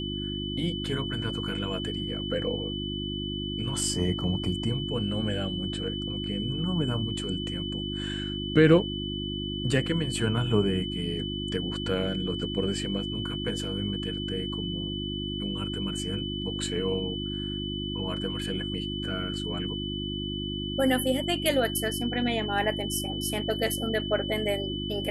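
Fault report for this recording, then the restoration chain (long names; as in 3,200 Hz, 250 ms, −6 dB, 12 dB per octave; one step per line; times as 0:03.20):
mains hum 50 Hz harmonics 7 −34 dBFS
whistle 3,000 Hz −35 dBFS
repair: notch filter 3,000 Hz, Q 30
hum removal 50 Hz, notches 7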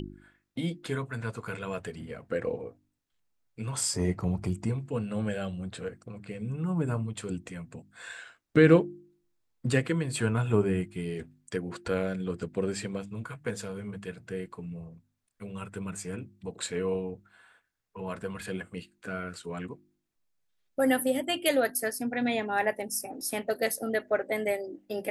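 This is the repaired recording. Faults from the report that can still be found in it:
none of them is left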